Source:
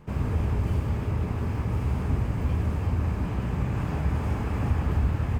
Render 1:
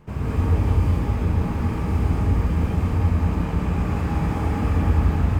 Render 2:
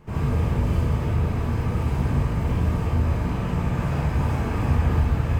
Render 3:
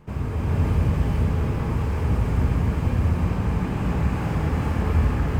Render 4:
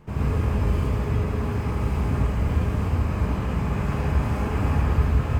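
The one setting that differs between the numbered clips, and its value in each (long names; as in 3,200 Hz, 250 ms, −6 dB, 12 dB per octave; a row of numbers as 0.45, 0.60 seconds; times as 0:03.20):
reverb whose tail is shaped and stops, gate: 230, 90, 480, 140 milliseconds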